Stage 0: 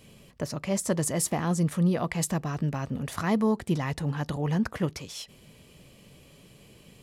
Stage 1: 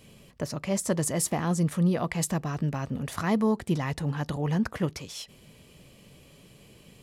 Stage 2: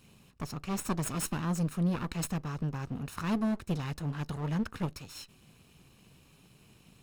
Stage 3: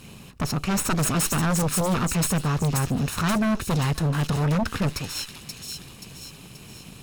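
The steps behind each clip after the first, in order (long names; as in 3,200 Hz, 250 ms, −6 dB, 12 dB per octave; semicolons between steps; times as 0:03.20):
no processing that can be heard
lower of the sound and its delayed copy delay 0.75 ms; level −5 dB
delay with a high-pass on its return 530 ms, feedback 47%, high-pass 3,800 Hz, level −3 dB; sine wavefolder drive 11 dB, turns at −19 dBFS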